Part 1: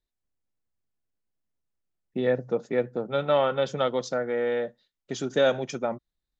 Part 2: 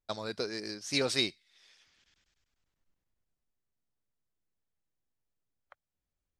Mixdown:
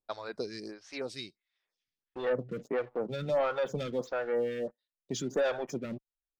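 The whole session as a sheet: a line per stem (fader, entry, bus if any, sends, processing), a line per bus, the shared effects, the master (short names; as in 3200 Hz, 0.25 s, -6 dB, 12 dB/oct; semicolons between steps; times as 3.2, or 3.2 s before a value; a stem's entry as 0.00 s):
-10.5 dB, 0.00 s, no send, spectral gate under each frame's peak -30 dB strong; high shelf 5100 Hz +11.5 dB; sample leveller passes 3
+1.0 dB, 0.00 s, no send, auto duck -24 dB, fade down 1.50 s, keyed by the first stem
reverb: off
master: LPF 3600 Hz 6 dB/oct; photocell phaser 1.5 Hz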